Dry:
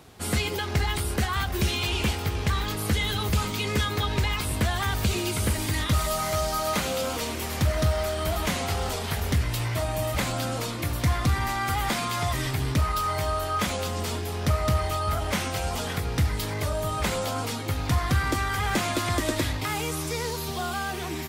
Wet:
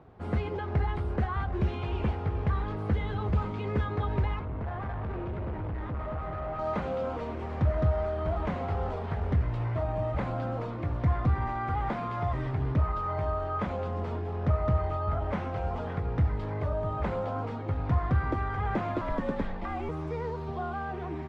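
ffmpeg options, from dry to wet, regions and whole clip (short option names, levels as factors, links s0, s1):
-filter_complex "[0:a]asettb=1/sr,asplit=3[s0][s1][s2];[s0]atrim=end=4.394[s3];[s1]atrim=start=4.39:end=6.59,asetpts=PTS-STARTPTS,afade=t=in:d=0.004:c=qsin,afade=t=out:st=2.196:d=0.004:c=qsin,lowpass=2300,aecho=1:1:224:0.631,atrim=end_sample=97020,asoftclip=type=hard:threshold=0.0335[s4];[s2]atrim=start=6.586[s5];[s3][s4]acrossfade=d=0.004:c1=hsin:c2=qsin[s6];[s6][s5]acrossfade=d=0.004:c1=qsin:c2=hsin,asettb=1/sr,asplit=3[s7][s8][s9];[s7]atrim=end=19.014[s10];[s8]atrim=start=19.01:end=19.89,asetpts=PTS-STARTPTS,afade=t=in:d=0.004:c=qsin,afade=t=out:st=0.876:d=0.004:c=qsin,highpass=85,afreqshift=-75[s11];[s9]atrim=start=19.886[s12];[s10][s11]acrossfade=d=0.004:c1=hsin:c2=qsin[s13];[s13][s12]acrossfade=d=0.004:c1=qsin:c2=hsin,lowpass=1100,equalizer=f=260:t=o:w=0.89:g=-2.5,volume=0.841"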